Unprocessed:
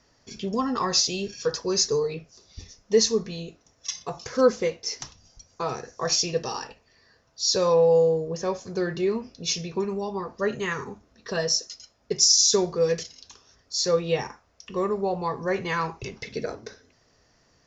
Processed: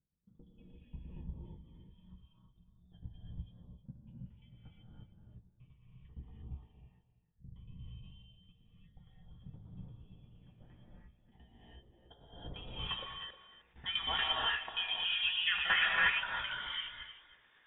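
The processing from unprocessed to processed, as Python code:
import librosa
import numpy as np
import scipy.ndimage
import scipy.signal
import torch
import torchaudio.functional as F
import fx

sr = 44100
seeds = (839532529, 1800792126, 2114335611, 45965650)

y = fx.delta_mod(x, sr, bps=32000, step_db=-36.0, at=(9.3, 10.5))
y = fx.freq_invert(y, sr, carrier_hz=3600)
y = fx.tremolo_shape(y, sr, shape='saw_down', hz=8.6, depth_pct=90)
y = fx.hum_notches(y, sr, base_hz=50, count=2)
y = fx.doubler(y, sr, ms=17.0, db=-12.5)
y = fx.rev_gated(y, sr, seeds[0], gate_ms=370, shape='rising', drr_db=-4.0)
y = fx.filter_sweep_lowpass(y, sr, from_hz=150.0, to_hz=1600.0, start_s=11.13, end_s=13.39, q=1.5)
y = fx.level_steps(y, sr, step_db=23, at=(13.04, 13.76))
y = y + 10.0 ** (-13.5 / 20.0) * np.pad(y, (int(310 * sr / 1000.0), 0))[:len(y)]
y = fx.sustainer(y, sr, db_per_s=34.0, at=(7.81, 8.52))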